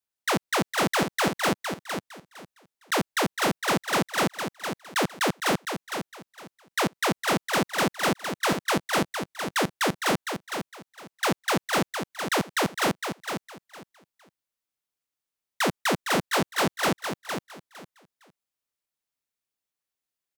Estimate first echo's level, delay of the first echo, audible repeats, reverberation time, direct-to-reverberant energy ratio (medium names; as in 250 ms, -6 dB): -7.0 dB, 459 ms, 3, no reverb, no reverb